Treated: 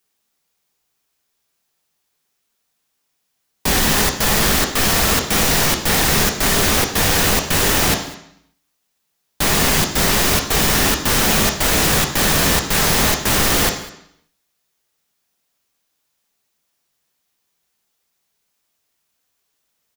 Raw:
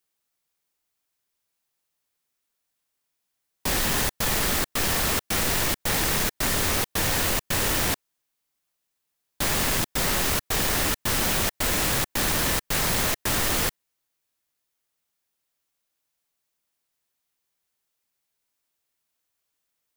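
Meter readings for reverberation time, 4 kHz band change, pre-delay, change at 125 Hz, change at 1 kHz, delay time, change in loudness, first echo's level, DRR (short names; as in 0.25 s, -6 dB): 0.75 s, +9.0 dB, 3 ms, +9.0 dB, +9.0 dB, 0.201 s, +8.0 dB, -21.0 dB, 3.5 dB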